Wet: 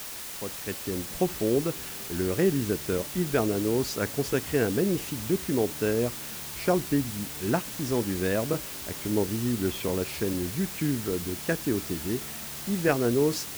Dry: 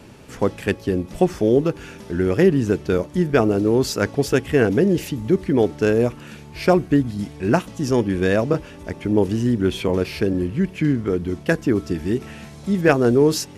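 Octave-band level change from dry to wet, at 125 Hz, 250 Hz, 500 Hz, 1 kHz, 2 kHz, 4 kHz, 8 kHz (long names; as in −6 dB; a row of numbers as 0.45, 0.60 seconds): −8.5, −8.5, −8.5, −8.0, −7.5, −2.5, +2.0 decibels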